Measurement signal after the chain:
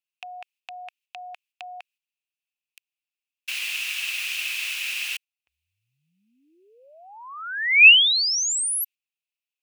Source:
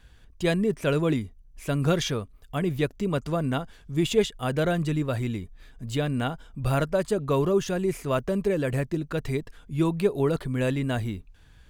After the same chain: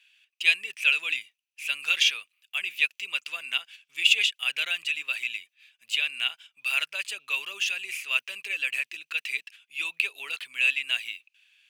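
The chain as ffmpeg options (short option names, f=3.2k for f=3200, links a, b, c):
-af "agate=range=-7dB:threshold=-43dB:ratio=16:detection=peak,highpass=f=2.6k:t=q:w=8.2,volume=1.5dB"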